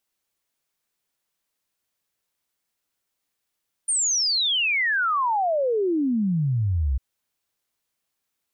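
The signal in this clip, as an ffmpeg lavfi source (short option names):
-f lavfi -i "aevalsrc='0.106*clip(min(t,3.1-t)/0.01,0,1)*sin(2*PI*9200*3.1/log(61/9200)*(exp(log(61/9200)*t/3.1)-1))':d=3.1:s=44100"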